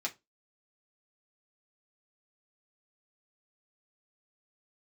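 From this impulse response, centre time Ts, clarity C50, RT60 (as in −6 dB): 9 ms, 20.0 dB, 0.20 s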